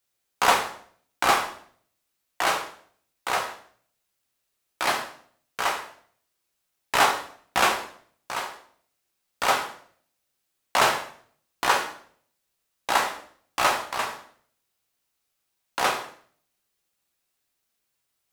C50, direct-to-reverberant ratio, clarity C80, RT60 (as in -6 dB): 9.0 dB, 2.0 dB, 12.5 dB, 0.55 s